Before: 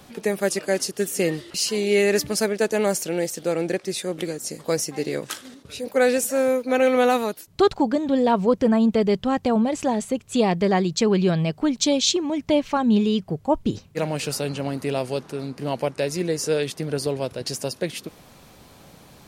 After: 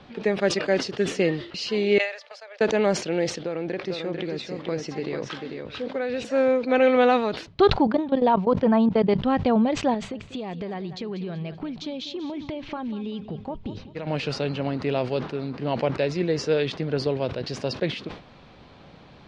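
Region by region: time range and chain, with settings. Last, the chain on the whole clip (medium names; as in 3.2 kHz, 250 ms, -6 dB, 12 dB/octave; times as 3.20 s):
1.98–2.61 s: gate -27 dBFS, range -13 dB + steep high-pass 500 Hz 72 dB/octave + compression 16:1, threshold -37 dBFS
3.43–6.25 s: compression, threshold -24 dBFS + distance through air 54 m + delay 445 ms -5 dB
7.87–9.22 s: peaking EQ 900 Hz +7 dB 0.87 oct + level held to a coarse grid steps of 18 dB
9.94–14.07 s: compression 12:1, threshold -28 dBFS + feedback delay 193 ms, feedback 36%, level -14 dB
whole clip: low-pass 4.1 kHz 24 dB/octave; decay stretcher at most 120 dB/s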